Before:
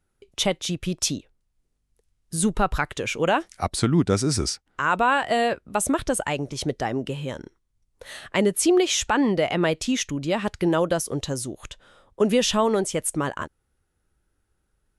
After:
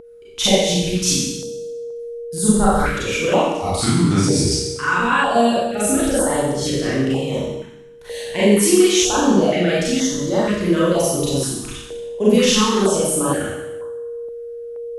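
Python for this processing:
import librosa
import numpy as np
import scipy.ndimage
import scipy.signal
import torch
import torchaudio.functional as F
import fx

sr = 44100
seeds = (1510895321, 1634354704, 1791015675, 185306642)

p1 = fx.rider(x, sr, range_db=10, speed_s=2.0)
p2 = x + (p1 * 10.0 ** (-2.0 / 20.0))
p3 = fx.rev_schroeder(p2, sr, rt60_s=1.0, comb_ms=30, drr_db=-9.5)
p4 = p3 + 10.0 ** (-18.0 / 20.0) * np.sin(2.0 * np.pi * 470.0 * np.arange(len(p3)) / sr)
p5 = fx.filter_held_notch(p4, sr, hz=2.1, low_hz=520.0, high_hz=2500.0)
y = p5 * 10.0 ** (-8.0 / 20.0)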